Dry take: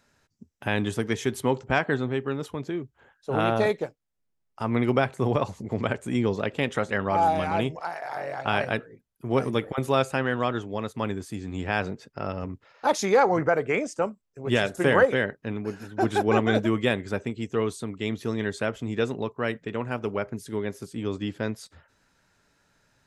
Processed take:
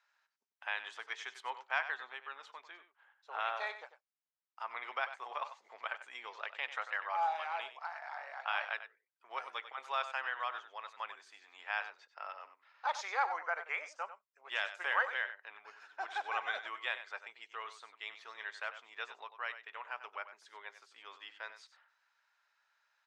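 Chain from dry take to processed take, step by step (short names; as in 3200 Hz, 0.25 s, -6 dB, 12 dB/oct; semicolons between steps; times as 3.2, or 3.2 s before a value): HPF 890 Hz 24 dB/oct; air absorption 150 m; echo 95 ms -12 dB; gain -6 dB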